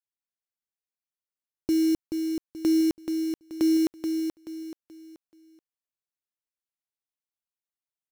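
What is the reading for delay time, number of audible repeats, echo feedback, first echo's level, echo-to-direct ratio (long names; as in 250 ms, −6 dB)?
430 ms, 4, 34%, −6.0 dB, −5.5 dB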